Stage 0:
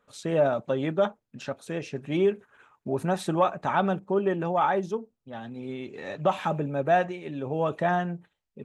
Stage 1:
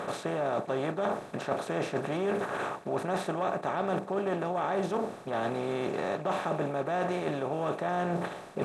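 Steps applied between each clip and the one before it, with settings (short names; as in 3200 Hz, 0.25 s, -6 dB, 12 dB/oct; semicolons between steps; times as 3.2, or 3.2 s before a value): per-bin compression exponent 0.4; reverse; compressor 10:1, threshold -27 dBFS, peak gain reduction 14.5 dB; reverse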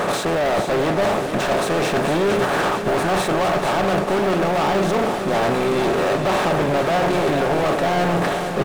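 sample leveller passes 5; feedback echo 0.452 s, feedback 57%, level -8 dB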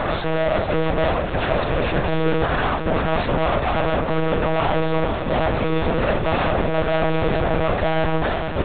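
de-hum 47.83 Hz, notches 40; monotone LPC vocoder at 8 kHz 160 Hz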